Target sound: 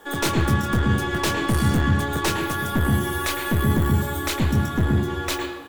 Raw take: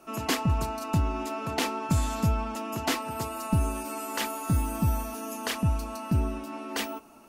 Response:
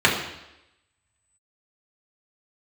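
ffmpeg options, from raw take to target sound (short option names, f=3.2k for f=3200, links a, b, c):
-filter_complex "[0:a]asplit=2[a][b];[b]adelay=31,volume=-9.5dB[c];[a][c]amix=inputs=2:normalize=0,aeval=exprs='(tanh(17.8*val(0)+0.5)-tanh(0.5))/17.8':c=same,asetrate=56448,aresample=44100,asplit=2[d][e];[1:a]atrim=start_sample=2205,lowshelf=f=370:g=8.5,adelay=107[f];[e][f]afir=irnorm=-1:irlink=0,volume=-26.5dB[g];[d][g]amix=inputs=2:normalize=0,volume=8dB"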